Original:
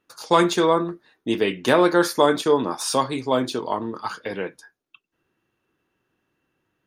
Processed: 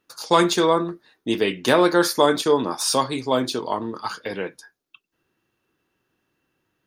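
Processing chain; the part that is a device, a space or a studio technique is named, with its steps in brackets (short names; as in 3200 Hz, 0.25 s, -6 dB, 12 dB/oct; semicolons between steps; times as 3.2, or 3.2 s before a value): presence and air boost (bell 4700 Hz +4 dB 0.86 oct; high shelf 10000 Hz +6.5 dB)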